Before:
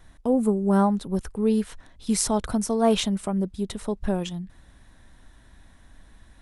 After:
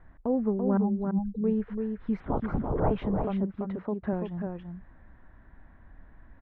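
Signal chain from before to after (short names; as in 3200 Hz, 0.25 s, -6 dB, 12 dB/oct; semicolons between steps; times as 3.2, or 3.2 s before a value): 0.77–1.44 spectral contrast raised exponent 3.4; 3.43–4.13 HPF 110 Hz 12 dB/oct; in parallel at -2 dB: compressor, threshold -30 dBFS, peak gain reduction 14.5 dB; 2.2–2.91 on the sum: LPC vocoder at 8 kHz whisper; LPF 1900 Hz 24 dB/oct; on a send: echo 0.337 s -5 dB; on the sum: gain -7 dB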